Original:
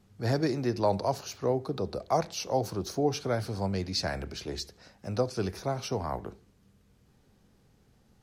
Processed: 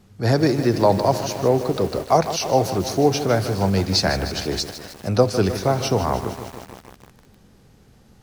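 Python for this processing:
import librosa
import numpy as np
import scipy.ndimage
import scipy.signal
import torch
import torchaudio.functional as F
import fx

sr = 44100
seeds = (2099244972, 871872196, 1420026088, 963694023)

p1 = fx.rider(x, sr, range_db=5, speed_s=2.0)
p2 = x + (p1 * 10.0 ** (2.0 / 20.0))
p3 = fx.echo_crushed(p2, sr, ms=154, feedback_pct=80, bits=6, wet_db=-11)
y = p3 * 10.0 ** (3.0 / 20.0)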